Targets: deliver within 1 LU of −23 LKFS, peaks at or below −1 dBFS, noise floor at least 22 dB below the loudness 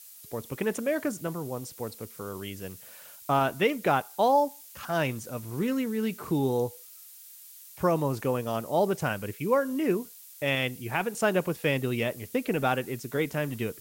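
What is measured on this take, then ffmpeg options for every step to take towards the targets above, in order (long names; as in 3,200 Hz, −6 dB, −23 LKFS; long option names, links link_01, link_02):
background noise floor −49 dBFS; target noise floor −51 dBFS; integrated loudness −29.0 LKFS; sample peak −13.0 dBFS; target loudness −23.0 LKFS
→ -af "afftdn=noise_reduction=6:noise_floor=-49"
-af "volume=6dB"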